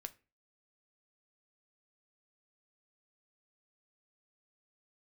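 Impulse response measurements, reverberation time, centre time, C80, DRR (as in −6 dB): 0.35 s, 3 ms, 26.0 dB, 8.5 dB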